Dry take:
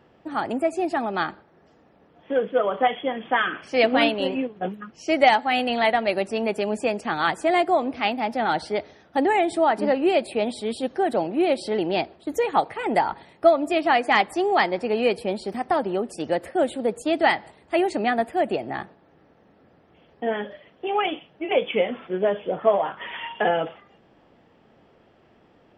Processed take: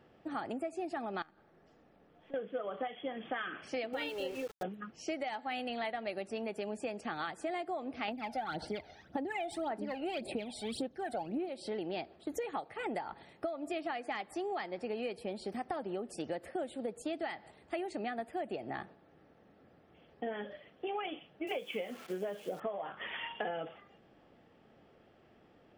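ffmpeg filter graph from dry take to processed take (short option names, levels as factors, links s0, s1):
-filter_complex "[0:a]asettb=1/sr,asplit=3[s0][s1][s2];[s0]atrim=end=1.224[s3];[s1]atrim=start=1.22:end=2.34,asetpts=PTS-STARTPTS,afade=t=in:d=0.004:c=qsin,afade=t=out:st=1.116:d=0.004:c=qsin,aeval=exprs='if(lt(val(0),0),0.708*val(0),val(0))':c=same,acompressor=threshold=0.00224:ratio=2.5:attack=3.2:release=140:knee=1:detection=peak[s4];[s2]atrim=start=2.336[s5];[s3][s4]acrossfade=d=0.004:c1=hsin:c2=qsin[s6];[s6][s5]acrossfade=d=0.004:c1=qsin:c2=hsin,asettb=1/sr,asplit=3[s7][s8][s9];[s7]atrim=end=3.934[s10];[s8]atrim=start=3.93:end=4.63,asetpts=PTS-STARTPTS,afade=t=in:d=0.004:c=qsin,afade=t=out:st=0.696:d=0.004:c=qsin,aecho=1:1:2.2:0.87,atrim=end_sample=30870,aeval=exprs='val(0)*gte(abs(val(0)),0.0211)':c=same[s11];[s9]atrim=start=4.626[s12];[s10][s11]acrossfade=d=0.004:c1=hsin:c2=qsin[s13];[s13][s12]acrossfade=d=0.004:c1=qsin:c2=hsin,asettb=1/sr,asplit=3[s14][s15][s16];[s14]atrim=end=8.084[s17];[s15]atrim=start=8.08:end=11.49,asetpts=PTS-STARTPTS,afade=t=in:d=0.004:c=qsin,afade=t=out:st=3.406:d=0.004:c=qsin,bandreject=f=1200:w=20,aphaser=in_gain=1:out_gain=1:delay=1.4:decay=0.7:speed=1.8:type=sinusoidal[s18];[s16]atrim=start=11.486[s19];[s17][s18]acrossfade=d=0.004:c1=hsin:c2=qsin[s20];[s20][s19]acrossfade=d=0.004:c1=qsin:c2=hsin,asettb=1/sr,asplit=3[s21][s22][s23];[s21]atrim=end=21.474[s24];[s22]atrim=start=21.47:end=22.6,asetpts=PTS-STARTPTS,afade=t=in:d=0.004:c=qsin,afade=t=out:st=1.126:d=0.004:c=qsin,equalizer=f=9200:t=o:w=2.6:g=4,acrusher=bits=8:dc=4:mix=0:aa=0.000001,highpass=120[s25];[s23]atrim=start=22.596[s26];[s24][s25]acrossfade=d=0.004:c1=hsin:c2=qsin[s27];[s27][s26]acrossfade=d=0.004:c1=qsin:c2=hsin,bandreject=f=970:w=10,alimiter=limit=0.299:level=0:latency=1:release=348,acompressor=threshold=0.0355:ratio=6,volume=0.501"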